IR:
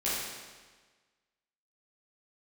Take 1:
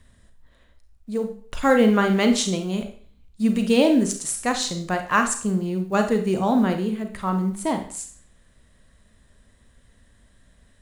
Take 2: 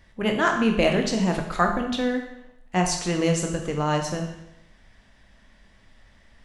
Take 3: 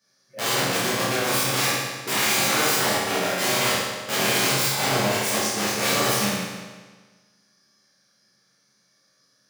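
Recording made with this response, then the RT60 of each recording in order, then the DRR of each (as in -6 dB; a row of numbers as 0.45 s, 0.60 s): 3; 0.50 s, 0.85 s, 1.4 s; 5.5 dB, 2.5 dB, -10.5 dB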